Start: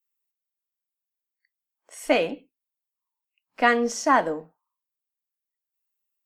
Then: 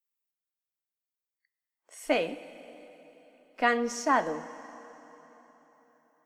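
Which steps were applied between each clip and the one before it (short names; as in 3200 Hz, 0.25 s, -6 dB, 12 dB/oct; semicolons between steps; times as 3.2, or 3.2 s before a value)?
plate-style reverb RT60 3.9 s, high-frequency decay 0.85×, DRR 13.5 dB; gain -5.5 dB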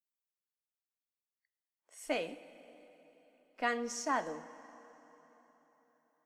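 dynamic EQ 7600 Hz, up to +6 dB, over -50 dBFS, Q 0.71; gain -8.5 dB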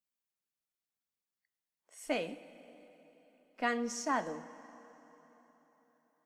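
bell 200 Hz +6.5 dB 0.72 oct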